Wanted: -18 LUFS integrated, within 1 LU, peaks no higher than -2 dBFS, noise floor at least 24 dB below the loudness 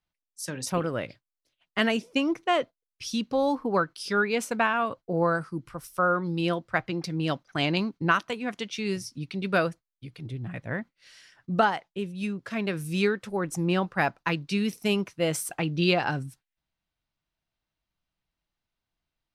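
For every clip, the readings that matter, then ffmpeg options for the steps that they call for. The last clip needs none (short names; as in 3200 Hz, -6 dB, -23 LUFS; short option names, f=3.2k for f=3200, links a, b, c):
loudness -28.0 LUFS; peak -9.5 dBFS; loudness target -18.0 LUFS
-> -af "volume=10dB,alimiter=limit=-2dB:level=0:latency=1"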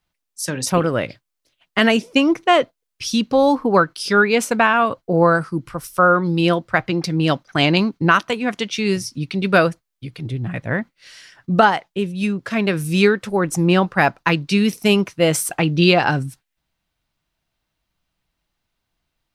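loudness -18.0 LUFS; peak -2.0 dBFS; noise floor -79 dBFS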